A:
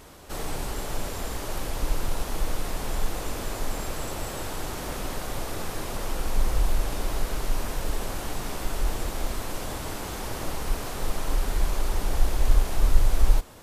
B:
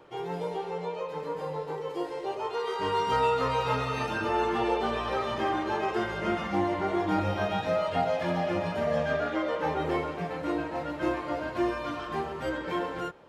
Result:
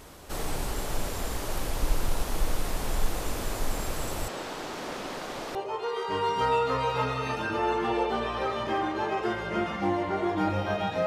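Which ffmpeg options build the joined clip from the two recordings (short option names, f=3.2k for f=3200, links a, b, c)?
-filter_complex "[0:a]asettb=1/sr,asplit=3[a][b][c];[a]atrim=end=4.284[d];[b]atrim=start=4.28:end=5.55,asetpts=PTS-STARTPTS,afade=t=in:d=0.004:c=qsin,afade=t=out:st=1.266:d=0.004:c=qsin,acrossover=split=170 6300:gain=0.0891 1 0.178[e][f][g];[e][f][g]amix=inputs=3:normalize=0[h];[c]atrim=start=5.546[i];[d][h]acrossfade=d=0.004:c1=hsin:c2=qsin[j];[j][i]acrossfade=d=0.004:c1=qsin:c2=hsin,apad=whole_dur=11.06,atrim=end=11.06,atrim=end=5.552[k];[1:a]atrim=start=2.258:end=7.77[l];[k][l]acrossfade=d=0.004:c1=hsin:c2=hsin"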